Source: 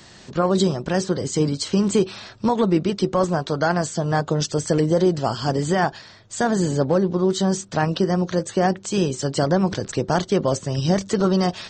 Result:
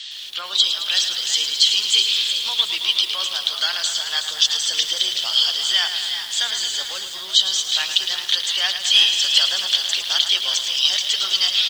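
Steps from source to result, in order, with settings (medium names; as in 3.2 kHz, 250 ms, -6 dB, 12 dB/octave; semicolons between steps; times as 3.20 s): ladder band-pass 3.5 kHz, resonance 75%; 8.28–9.46 s: overdrive pedal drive 8 dB, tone 4.3 kHz, clips at -23.5 dBFS; on a send: frequency-shifting echo 372 ms, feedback 42%, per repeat +110 Hz, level -9 dB; on the sum: loudness maximiser +23.5 dB; bit-crushed delay 109 ms, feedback 80%, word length 6-bit, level -9 dB; trim -1.5 dB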